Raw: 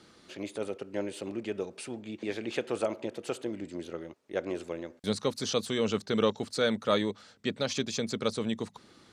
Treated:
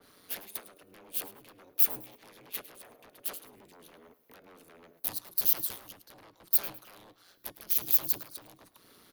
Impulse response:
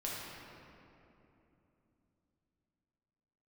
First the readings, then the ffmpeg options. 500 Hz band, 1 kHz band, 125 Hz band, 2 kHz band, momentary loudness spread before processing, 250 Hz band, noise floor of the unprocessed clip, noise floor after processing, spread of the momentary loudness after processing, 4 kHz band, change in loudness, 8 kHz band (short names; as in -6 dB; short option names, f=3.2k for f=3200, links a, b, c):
-22.0 dB, -12.0 dB, -17.5 dB, -11.0 dB, 11 LU, -21.5 dB, -59 dBFS, -65 dBFS, 20 LU, -9.0 dB, +4.0 dB, +2.0 dB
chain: -filter_complex "[0:a]acrossover=split=170|540|6000[a][b][c][d];[c]alimiter=level_in=4.5dB:limit=-24dB:level=0:latency=1:release=122,volume=-4.5dB[e];[a][b][e][d]amix=inputs=4:normalize=0,acompressor=threshold=-42dB:ratio=8,aeval=exprs='0.0299*sin(PI/2*5.62*val(0)/0.0299)':c=same,aeval=exprs='val(0)*sin(2*PI*90*n/s)':c=same,aexciter=amount=11.7:drive=8:freq=11k,bandreject=f=364:t=h:w=4,bandreject=f=728:t=h:w=4,bandreject=f=1.092k:t=h:w=4,bandreject=f=1.456k:t=h:w=4,bandreject=f=1.82k:t=h:w=4,bandreject=f=2.184k:t=h:w=4,bandreject=f=2.548k:t=h:w=4,bandreject=f=2.912k:t=h:w=4,bandreject=f=3.276k:t=h:w=4,bandreject=f=3.64k:t=h:w=4,bandreject=f=4.004k:t=h:w=4,bandreject=f=4.368k:t=h:w=4,bandreject=f=4.732k:t=h:w=4,bandreject=f=5.096k:t=h:w=4,bandreject=f=5.46k:t=h:w=4,bandreject=f=5.824k:t=h:w=4,bandreject=f=6.188k:t=h:w=4,bandreject=f=6.552k:t=h:w=4,bandreject=f=6.916k:t=h:w=4,bandreject=f=7.28k:t=h:w=4,bandreject=f=7.644k:t=h:w=4,bandreject=f=8.008k:t=h:w=4,bandreject=f=8.372k:t=h:w=4,bandreject=f=8.736k:t=h:w=4,bandreject=f=9.1k:t=h:w=4,bandreject=f=9.464k:t=h:w=4,bandreject=f=9.828k:t=h:w=4,bandreject=f=10.192k:t=h:w=4,bandreject=f=10.556k:t=h:w=4,bandreject=f=10.92k:t=h:w=4,bandreject=f=11.284k:t=h:w=4,bandreject=f=11.648k:t=h:w=4,bandreject=f=12.012k:t=h:w=4,agate=range=-10dB:threshold=-33dB:ratio=16:detection=peak,lowshelf=f=180:g=-7.5,aecho=1:1:106|212|318:0.126|0.0378|0.0113,adynamicequalizer=threshold=0.00501:dfrequency=2800:dqfactor=0.7:tfrequency=2800:tqfactor=0.7:attack=5:release=100:ratio=0.375:range=2.5:mode=boostabove:tftype=highshelf,volume=-7dB"